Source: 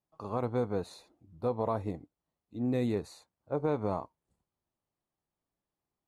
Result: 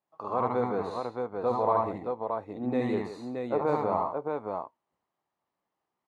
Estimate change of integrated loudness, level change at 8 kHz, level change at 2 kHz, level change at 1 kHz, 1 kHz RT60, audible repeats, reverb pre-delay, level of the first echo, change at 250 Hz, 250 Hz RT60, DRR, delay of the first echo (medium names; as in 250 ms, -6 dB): +3.0 dB, no reading, +6.5 dB, +10.0 dB, no reverb, 3, no reverb, -1.0 dB, +2.0 dB, no reverb, no reverb, 73 ms